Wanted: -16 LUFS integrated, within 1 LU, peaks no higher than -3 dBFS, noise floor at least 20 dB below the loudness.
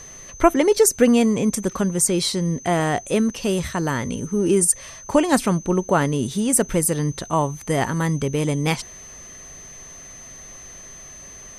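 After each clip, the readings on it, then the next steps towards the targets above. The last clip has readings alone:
steady tone 6.2 kHz; tone level -39 dBFS; loudness -20.5 LUFS; peak level -3.0 dBFS; loudness target -16.0 LUFS
-> band-stop 6.2 kHz, Q 30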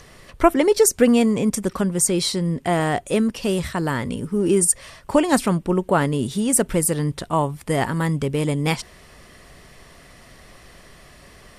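steady tone not found; loudness -20.5 LUFS; peak level -3.0 dBFS; loudness target -16.0 LUFS
-> trim +4.5 dB; peak limiter -3 dBFS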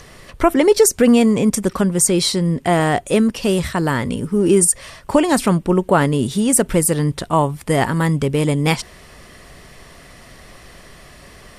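loudness -16.5 LUFS; peak level -3.0 dBFS; noise floor -43 dBFS

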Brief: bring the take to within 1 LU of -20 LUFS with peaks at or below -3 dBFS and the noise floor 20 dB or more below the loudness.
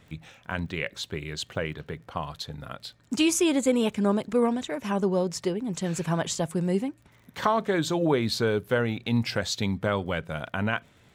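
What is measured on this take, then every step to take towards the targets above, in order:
tick rate 29 per s; loudness -27.5 LUFS; peak level -8.5 dBFS; loudness target -20.0 LUFS
-> de-click; trim +7.5 dB; peak limiter -3 dBFS

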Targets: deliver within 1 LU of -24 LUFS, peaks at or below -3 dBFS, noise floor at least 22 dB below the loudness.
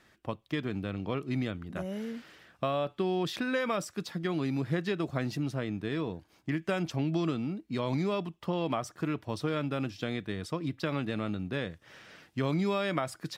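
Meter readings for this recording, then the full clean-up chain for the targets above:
loudness -33.5 LUFS; peak level -15.0 dBFS; loudness target -24.0 LUFS
-> trim +9.5 dB

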